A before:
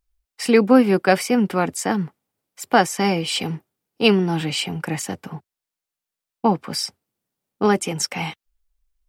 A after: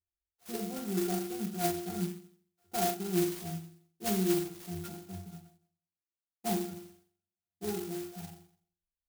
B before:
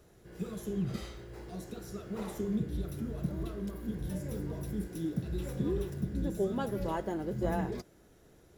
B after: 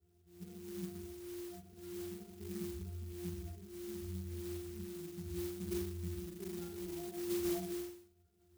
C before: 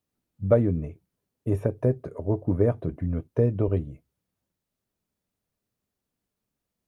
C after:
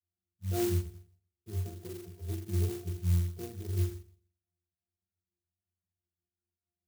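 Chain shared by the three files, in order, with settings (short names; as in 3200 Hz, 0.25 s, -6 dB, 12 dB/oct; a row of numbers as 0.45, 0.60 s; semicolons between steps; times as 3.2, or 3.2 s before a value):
dynamic EQ 340 Hz, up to +5 dB, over -41 dBFS, Q 6.8; octave resonator F, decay 0.54 s; chorus voices 6, 0.32 Hz, delay 12 ms, depth 2.6 ms; flutter echo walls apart 7.3 m, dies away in 0.55 s; clock jitter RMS 0.14 ms; gain +5.5 dB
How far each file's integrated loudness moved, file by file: -14.0, -7.0, -8.0 LU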